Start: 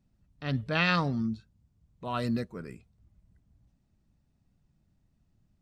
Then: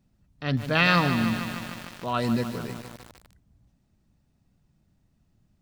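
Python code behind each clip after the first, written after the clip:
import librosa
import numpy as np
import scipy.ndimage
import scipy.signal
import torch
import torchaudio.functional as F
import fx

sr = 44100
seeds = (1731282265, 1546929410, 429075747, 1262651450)

y = fx.low_shelf(x, sr, hz=120.0, db=-4.0)
y = fx.echo_crushed(y, sr, ms=151, feedback_pct=80, bits=7, wet_db=-9.0)
y = y * 10.0 ** (5.5 / 20.0)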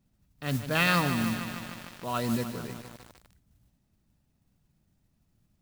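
y = fx.mod_noise(x, sr, seeds[0], snr_db=15)
y = y * 10.0 ** (-4.0 / 20.0)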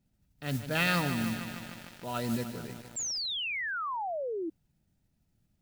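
y = fx.notch(x, sr, hz=1100.0, q=5.7)
y = fx.spec_paint(y, sr, seeds[1], shape='fall', start_s=2.96, length_s=1.54, low_hz=310.0, high_hz=7600.0, level_db=-31.0)
y = y * 10.0 ** (-3.0 / 20.0)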